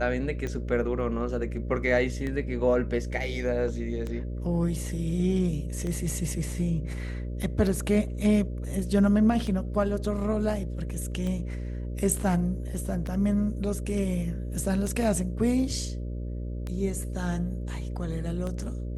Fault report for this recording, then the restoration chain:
buzz 60 Hz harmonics 10 -33 dBFS
tick 33 1/3 rpm -21 dBFS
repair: de-click; de-hum 60 Hz, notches 10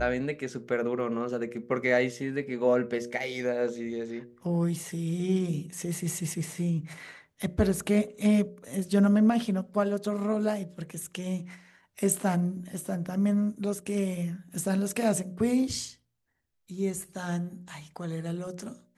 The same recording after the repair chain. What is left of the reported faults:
nothing left

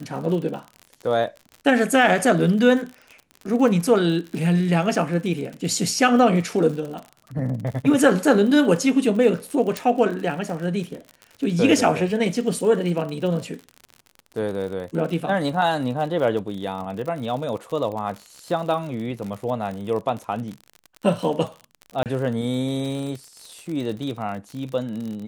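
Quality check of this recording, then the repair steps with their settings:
crackle 58 per s -30 dBFS
9.77 s: pop
22.03–22.06 s: dropout 28 ms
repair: de-click; interpolate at 22.03 s, 28 ms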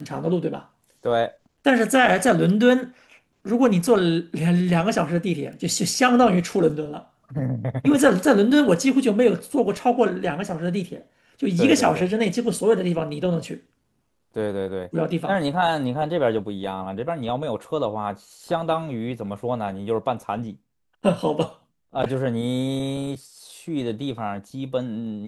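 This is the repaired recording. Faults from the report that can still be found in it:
9.77 s: pop

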